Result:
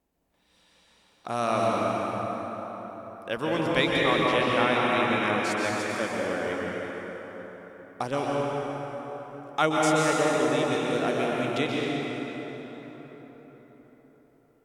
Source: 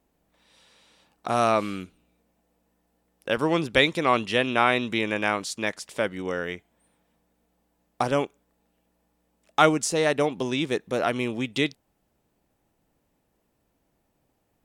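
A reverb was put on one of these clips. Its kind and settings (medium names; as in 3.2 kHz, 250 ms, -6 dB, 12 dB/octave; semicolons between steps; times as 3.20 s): plate-style reverb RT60 4.8 s, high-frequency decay 0.55×, pre-delay 115 ms, DRR -4 dB; trim -6 dB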